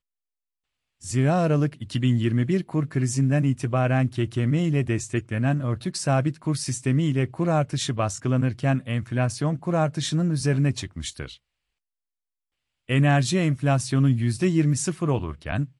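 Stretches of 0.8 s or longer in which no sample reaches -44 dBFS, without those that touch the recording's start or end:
11.36–12.88

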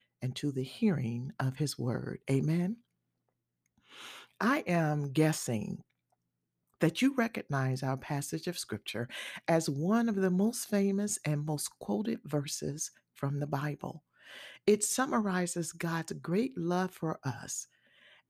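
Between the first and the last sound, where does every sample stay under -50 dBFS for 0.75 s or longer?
2.75–3.91
5.81–6.8

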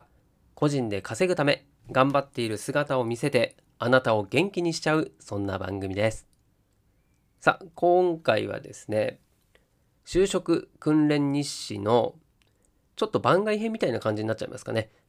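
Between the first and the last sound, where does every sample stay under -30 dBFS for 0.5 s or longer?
6.16–7.47
9.1–10.11
12.08–12.99

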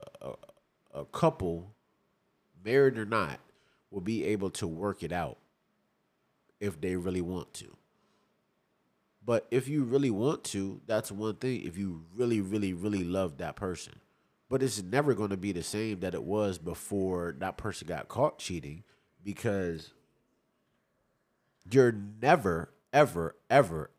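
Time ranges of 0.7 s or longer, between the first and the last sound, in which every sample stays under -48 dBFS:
1.7–2.62
5.33–6.61
7.74–9.25
19.89–21.62

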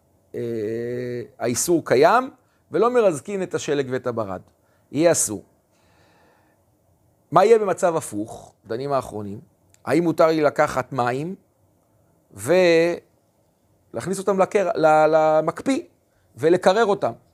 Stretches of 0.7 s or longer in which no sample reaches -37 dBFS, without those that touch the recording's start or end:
5.41–7.32
11.34–12.34
12.99–13.94

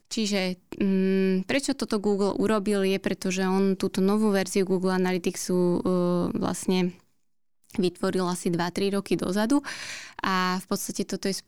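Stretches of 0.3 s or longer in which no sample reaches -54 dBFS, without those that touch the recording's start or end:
7.02–7.64

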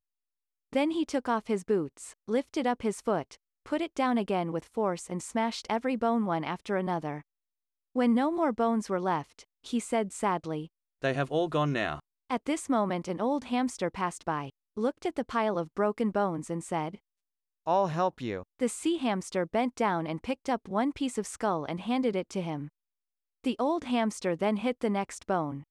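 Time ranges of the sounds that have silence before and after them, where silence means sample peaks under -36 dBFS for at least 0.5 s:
0.73–7.19
7.96–16.95
17.67–22.66

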